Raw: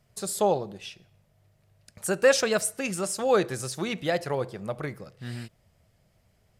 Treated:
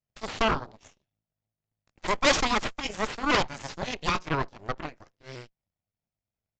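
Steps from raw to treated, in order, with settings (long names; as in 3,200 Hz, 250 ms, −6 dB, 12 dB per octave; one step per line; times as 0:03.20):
pitch shifter swept by a sawtooth +2 semitones, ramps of 255 ms
harmonic generator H 3 −10 dB, 8 −10 dB, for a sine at −9.5 dBFS
downsampling to 16,000 Hz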